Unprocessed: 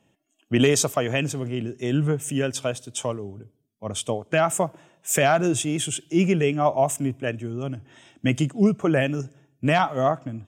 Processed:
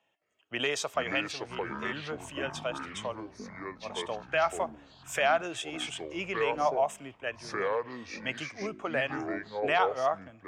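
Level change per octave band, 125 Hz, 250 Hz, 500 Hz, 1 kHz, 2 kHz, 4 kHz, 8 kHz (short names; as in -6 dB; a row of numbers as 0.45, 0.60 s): -21.0, -15.5, -7.5, -4.5, -3.0, -5.0, -15.0 dB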